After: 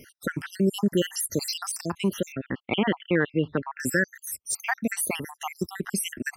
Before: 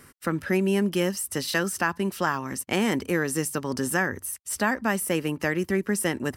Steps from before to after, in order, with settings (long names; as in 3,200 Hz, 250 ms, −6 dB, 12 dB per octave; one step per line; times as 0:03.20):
time-frequency cells dropped at random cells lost 68%
0:02.32–0:03.80: Butterworth low-pass 3,700 Hz 72 dB per octave
in parallel at −1 dB: brickwall limiter −23 dBFS, peak gain reduction 10 dB